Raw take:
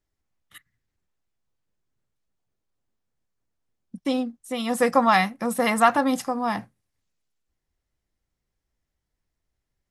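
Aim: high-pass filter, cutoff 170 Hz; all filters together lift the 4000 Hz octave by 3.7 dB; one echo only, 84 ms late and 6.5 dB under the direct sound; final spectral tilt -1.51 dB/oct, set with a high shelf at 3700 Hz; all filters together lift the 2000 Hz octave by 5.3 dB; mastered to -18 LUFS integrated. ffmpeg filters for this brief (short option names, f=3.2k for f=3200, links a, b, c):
-af "highpass=170,equalizer=f=2k:t=o:g=6,highshelf=f=3.7k:g=-4,equalizer=f=4k:t=o:g=5,aecho=1:1:84:0.473,volume=2.5dB"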